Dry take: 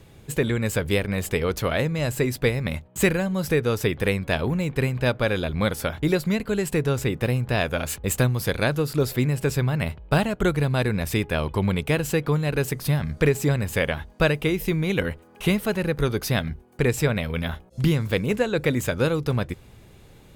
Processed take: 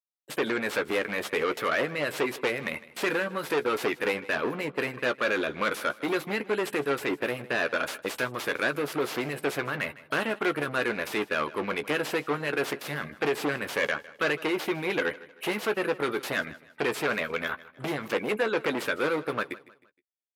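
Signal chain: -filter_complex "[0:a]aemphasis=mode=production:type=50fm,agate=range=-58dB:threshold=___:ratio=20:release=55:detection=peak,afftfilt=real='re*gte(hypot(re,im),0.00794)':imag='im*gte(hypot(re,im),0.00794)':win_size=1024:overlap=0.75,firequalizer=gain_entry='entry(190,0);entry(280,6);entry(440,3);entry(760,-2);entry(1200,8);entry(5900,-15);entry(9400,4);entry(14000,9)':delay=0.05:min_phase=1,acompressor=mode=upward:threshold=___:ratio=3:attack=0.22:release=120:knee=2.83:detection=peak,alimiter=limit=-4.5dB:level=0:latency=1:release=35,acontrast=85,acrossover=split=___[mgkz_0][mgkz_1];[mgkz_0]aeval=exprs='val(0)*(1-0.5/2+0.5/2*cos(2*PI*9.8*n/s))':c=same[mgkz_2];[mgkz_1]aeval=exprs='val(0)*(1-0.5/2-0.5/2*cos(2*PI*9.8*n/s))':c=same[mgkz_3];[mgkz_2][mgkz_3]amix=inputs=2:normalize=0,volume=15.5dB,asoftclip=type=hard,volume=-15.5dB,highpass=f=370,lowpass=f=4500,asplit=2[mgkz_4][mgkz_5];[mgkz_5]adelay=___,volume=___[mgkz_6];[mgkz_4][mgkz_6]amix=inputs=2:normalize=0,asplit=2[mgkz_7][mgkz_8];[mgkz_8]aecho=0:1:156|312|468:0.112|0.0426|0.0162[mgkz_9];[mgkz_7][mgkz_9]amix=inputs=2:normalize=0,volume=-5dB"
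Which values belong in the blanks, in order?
-33dB, -26dB, 1800, 14, -10.5dB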